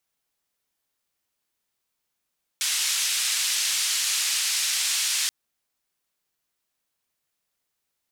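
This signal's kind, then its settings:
band-limited noise 2,400–8,200 Hz, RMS −25 dBFS 2.68 s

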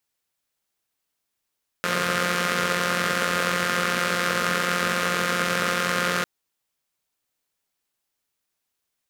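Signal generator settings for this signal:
pulse-train model of a four-cylinder engine, steady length 4.40 s, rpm 5,300, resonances 220/480/1,300 Hz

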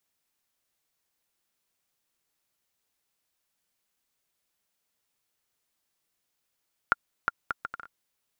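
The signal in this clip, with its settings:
bouncing ball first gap 0.36 s, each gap 0.63, 1,400 Hz, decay 25 ms −7.5 dBFS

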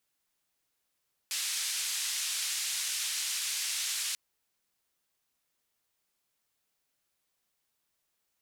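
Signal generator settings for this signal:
band-limited noise 2,400–8,900 Hz, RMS −33.5 dBFS 2.84 s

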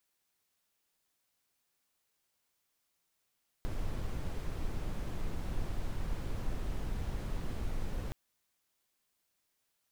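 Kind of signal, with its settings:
noise brown, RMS −34.5 dBFS 4.47 s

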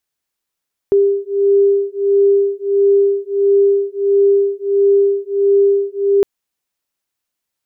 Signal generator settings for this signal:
two tones that beat 398 Hz, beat 1.5 Hz, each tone −13.5 dBFS 5.31 s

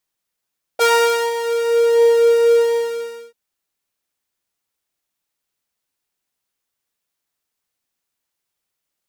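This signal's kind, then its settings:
subtractive patch with pulse-width modulation A#4, detune 15 cents, sub −27.5 dB, filter highpass, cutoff 270 Hz, Q 4.8, filter envelope 1.5 octaves, filter decay 1.42 s, filter sustain 45%, attack 29 ms, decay 0.49 s, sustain −13.5 dB, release 0.72 s, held 1.82 s, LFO 1.4 Hz, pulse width 46%, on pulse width 11%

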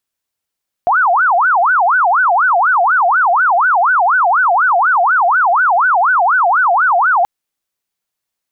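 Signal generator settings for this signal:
siren wail 685–1,520 Hz 4.1 per second sine −8.5 dBFS 6.38 s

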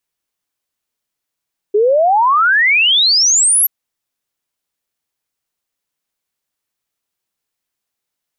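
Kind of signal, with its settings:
exponential sine sweep 400 Hz → 12,000 Hz 1.93 s −8.5 dBFS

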